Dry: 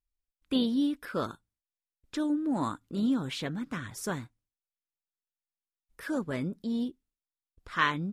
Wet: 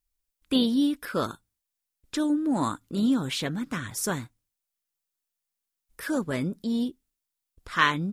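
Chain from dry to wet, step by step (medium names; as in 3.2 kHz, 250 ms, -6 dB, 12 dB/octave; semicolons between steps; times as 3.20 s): treble shelf 5.3 kHz +8 dB; trim +4 dB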